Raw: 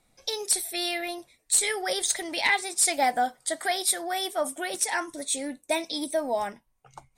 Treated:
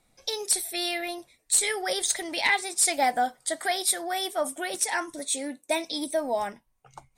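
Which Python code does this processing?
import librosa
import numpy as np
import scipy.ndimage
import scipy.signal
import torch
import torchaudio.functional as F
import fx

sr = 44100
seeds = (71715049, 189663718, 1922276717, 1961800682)

y = fx.highpass(x, sr, hz=160.0, slope=12, at=(5.19, 5.86))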